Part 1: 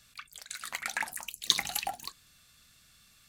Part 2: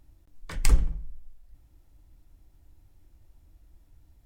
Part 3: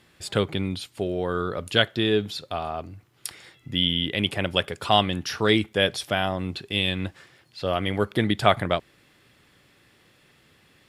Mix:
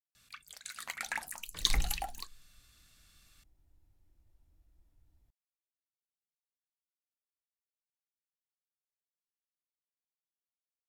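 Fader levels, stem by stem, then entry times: -4.0 dB, -11.5 dB, off; 0.15 s, 1.05 s, off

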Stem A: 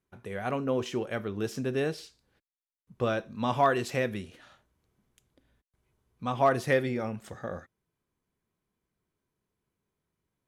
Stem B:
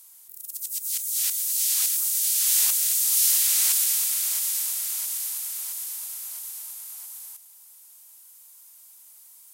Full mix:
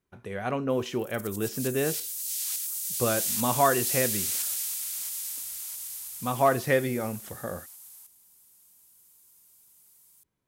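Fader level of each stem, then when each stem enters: +1.5, -8.5 dB; 0.00, 0.70 s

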